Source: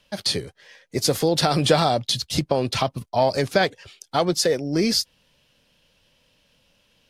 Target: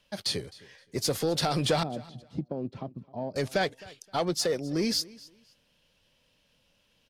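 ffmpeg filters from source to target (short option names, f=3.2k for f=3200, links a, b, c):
-filter_complex "[0:a]asettb=1/sr,asplit=3[a][b][c];[a]atrim=end=1.834[d];[b]atrim=start=1.83:end=3.36,asetpts=PTS-STARTPTS,afade=t=in:d=0.004:c=qsin,afade=t=out:st=1.526:d=0.004:c=qsin,bandpass=f=230:t=q:w=1.3:csg=0[e];[c]atrim=start=3.356[f];[d][e]acrossfade=d=0.004:c1=hsin:c2=qsin[g];[g][f]acrossfade=d=0.004:c1=qsin:c2=hsin,asoftclip=type=tanh:threshold=-11.5dB,asplit=2[h][i];[i]aecho=0:1:261|522:0.0841|0.0194[j];[h][j]amix=inputs=2:normalize=0,volume=-6dB"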